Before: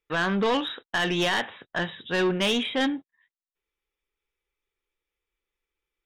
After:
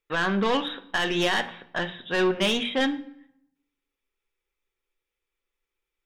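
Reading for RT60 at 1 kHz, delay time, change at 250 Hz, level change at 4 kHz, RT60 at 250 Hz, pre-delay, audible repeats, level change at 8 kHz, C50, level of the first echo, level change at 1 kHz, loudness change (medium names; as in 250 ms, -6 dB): 0.80 s, no echo, 0.0 dB, +0.5 dB, 1.0 s, 4 ms, no echo, 0.0 dB, 16.5 dB, no echo, +0.5 dB, +0.5 dB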